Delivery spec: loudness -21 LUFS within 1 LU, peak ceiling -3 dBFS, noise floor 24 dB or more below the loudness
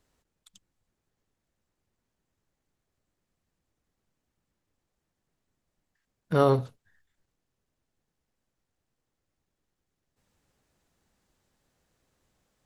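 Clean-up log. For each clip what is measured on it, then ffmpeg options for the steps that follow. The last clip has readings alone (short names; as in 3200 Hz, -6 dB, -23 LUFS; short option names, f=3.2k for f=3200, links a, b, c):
loudness -25.0 LUFS; peak -8.5 dBFS; loudness target -21.0 LUFS
-> -af "volume=4dB"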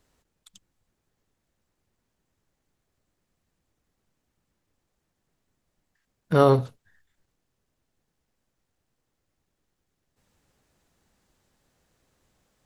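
loudness -21.0 LUFS; peak -4.5 dBFS; noise floor -79 dBFS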